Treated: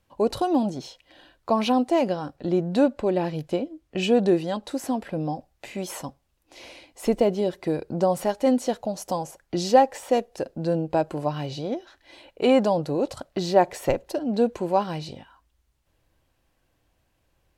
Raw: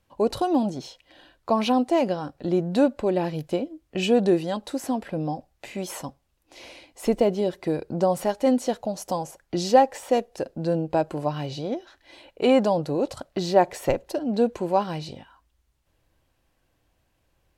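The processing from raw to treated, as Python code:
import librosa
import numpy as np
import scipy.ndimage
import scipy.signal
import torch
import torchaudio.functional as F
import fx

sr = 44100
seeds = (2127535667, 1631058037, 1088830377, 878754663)

y = fx.high_shelf(x, sr, hz=11000.0, db=-7.0, at=(2.36, 4.71))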